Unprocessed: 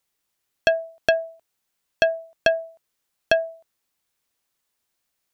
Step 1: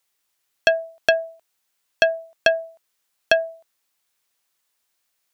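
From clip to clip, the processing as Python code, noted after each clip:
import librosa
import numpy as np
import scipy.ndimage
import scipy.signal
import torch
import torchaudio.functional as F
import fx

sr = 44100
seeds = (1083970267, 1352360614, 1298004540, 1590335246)

y = fx.low_shelf(x, sr, hz=440.0, db=-9.5)
y = F.gain(torch.from_numpy(y), 4.0).numpy()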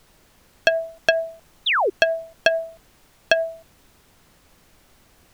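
y = fx.transient(x, sr, attack_db=5, sustain_db=9)
y = fx.spec_paint(y, sr, seeds[0], shape='fall', start_s=1.66, length_s=0.24, low_hz=340.0, high_hz=4000.0, level_db=-14.0)
y = fx.dmg_noise_colour(y, sr, seeds[1], colour='pink', level_db=-51.0)
y = F.gain(torch.from_numpy(y), -5.0).numpy()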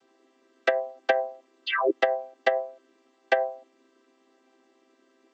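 y = fx.chord_vocoder(x, sr, chord='major triad', root=60)
y = F.gain(torch.from_numpy(y), -4.0).numpy()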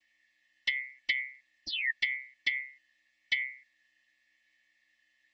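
y = fx.band_shuffle(x, sr, order='4123')
y = F.gain(torch.from_numpy(y), -8.0).numpy()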